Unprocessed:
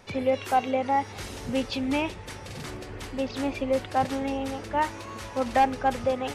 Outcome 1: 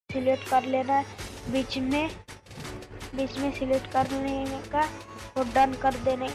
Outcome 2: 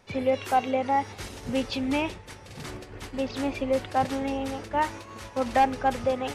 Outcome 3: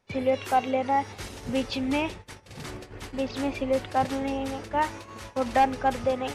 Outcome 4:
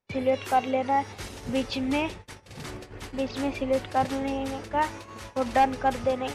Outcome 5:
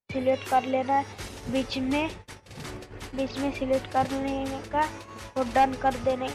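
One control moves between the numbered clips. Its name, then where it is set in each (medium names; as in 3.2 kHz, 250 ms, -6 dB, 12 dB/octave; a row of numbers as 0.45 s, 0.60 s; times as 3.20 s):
gate, range: -59 dB, -6 dB, -19 dB, -33 dB, -45 dB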